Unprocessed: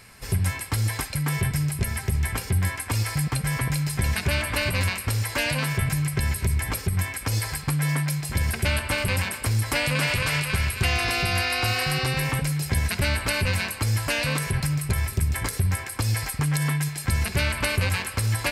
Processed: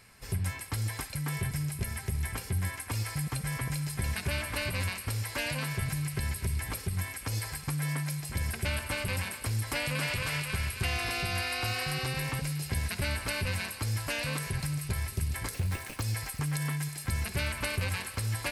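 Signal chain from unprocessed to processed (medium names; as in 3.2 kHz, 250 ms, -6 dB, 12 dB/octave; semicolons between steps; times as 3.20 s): 15.54–16.02 s: sample-rate reducer 11 kHz, jitter 0%; feedback echo behind a high-pass 361 ms, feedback 83%, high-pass 4.6 kHz, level -10.5 dB; trim -8 dB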